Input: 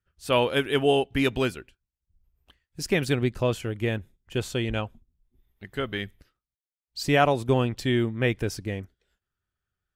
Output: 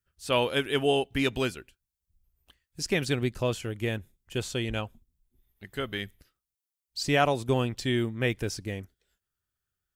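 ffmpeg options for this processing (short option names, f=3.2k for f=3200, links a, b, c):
-filter_complex "[0:a]acrossover=split=8000[a][b];[b]acompressor=threshold=-57dB:ratio=4:attack=1:release=60[c];[a][c]amix=inputs=2:normalize=0,highshelf=f=5.5k:g=11.5,volume=-3.5dB"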